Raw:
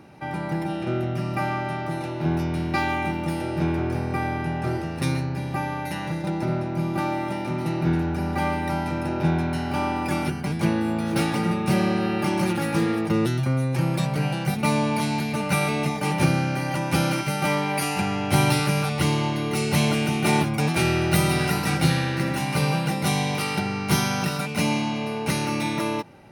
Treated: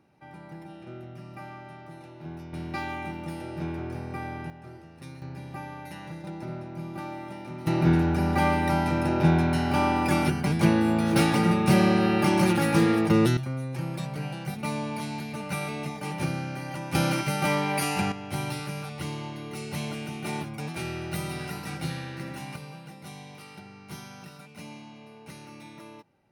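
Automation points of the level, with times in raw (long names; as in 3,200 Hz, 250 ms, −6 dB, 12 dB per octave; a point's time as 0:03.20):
−16 dB
from 0:02.53 −9 dB
from 0:04.50 −19 dB
from 0:05.22 −11 dB
from 0:07.67 +1.5 dB
from 0:13.37 −9 dB
from 0:16.95 −2 dB
from 0:18.12 −12 dB
from 0:22.56 −20 dB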